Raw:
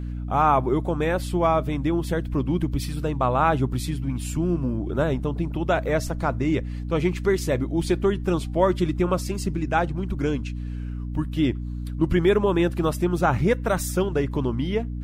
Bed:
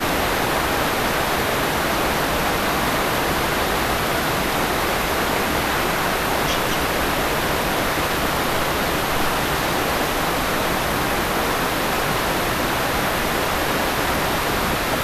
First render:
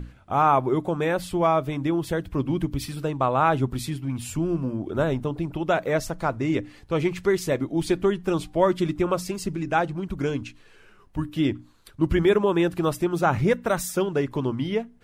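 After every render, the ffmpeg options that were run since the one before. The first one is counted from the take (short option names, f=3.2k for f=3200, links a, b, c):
-af "bandreject=f=60:t=h:w=6,bandreject=f=120:t=h:w=6,bandreject=f=180:t=h:w=6,bandreject=f=240:t=h:w=6,bandreject=f=300:t=h:w=6"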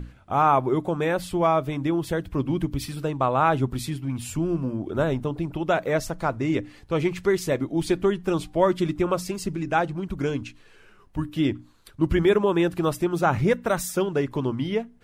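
-af anull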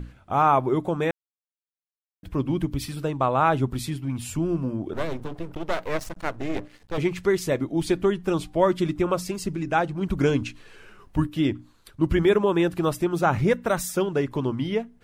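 -filter_complex "[0:a]asettb=1/sr,asplit=3[a][b][c];[a]atrim=end=4.934[d];[b]atrim=start=4.93:end=6.98,asetpts=PTS-STARTPTS,afade=t=in:d=0.004:c=qsin,afade=t=out:st=2.046:d=0.004:c=qsin,aeval=exprs='max(val(0),0)':c=same[e];[c]atrim=start=6.976[f];[d][e]acrossfade=d=0.004:c1=hsin:c2=qsin[g];[g][f]acrossfade=d=0.004:c1=qsin:c2=hsin,asplit=5[h][i][j][k][l];[h]atrim=end=1.11,asetpts=PTS-STARTPTS,afade=t=out:st=1.106:d=0.004:c=hsin[m];[i]atrim=start=1.11:end=2.23,asetpts=PTS-STARTPTS,volume=0[n];[j]atrim=start=2.23:end=10.012,asetpts=PTS-STARTPTS,afade=t=in:d=0.004:c=hsin[o];[k]atrim=start=10.008:end=11.272,asetpts=PTS-STARTPTS,volume=5dB[p];[l]atrim=start=11.268[q];[m][n][o]concat=n=3:v=0:a=1[r];[r][p]acrossfade=d=0.004:c1=hsin:c2=hsin[s];[s][q]acrossfade=d=0.004:c1=hsin:c2=hsin"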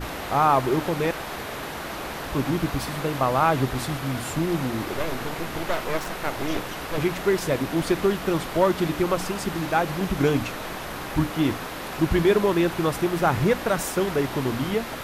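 -filter_complex "[1:a]volume=-12.5dB[a];[0:a][a]amix=inputs=2:normalize=0"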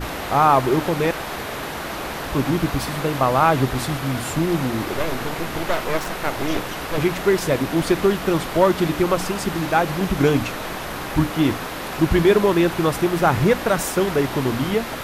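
-af "volume=4dB"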